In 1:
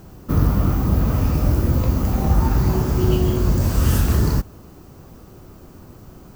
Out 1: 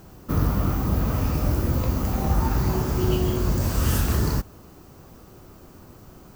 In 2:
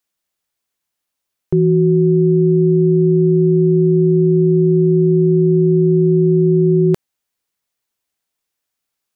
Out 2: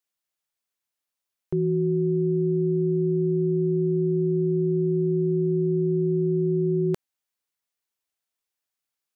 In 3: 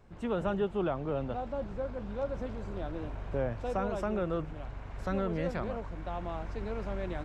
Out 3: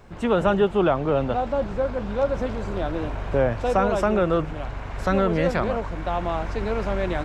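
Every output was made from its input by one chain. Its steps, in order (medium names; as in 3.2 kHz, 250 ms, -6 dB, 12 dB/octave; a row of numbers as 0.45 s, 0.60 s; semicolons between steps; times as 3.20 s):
bass shelf 420 Hz -4.5 dB; normalise loudness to -24 LUFS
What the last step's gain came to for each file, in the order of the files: -1.0 dB, -7.5 dB, +13.5 dB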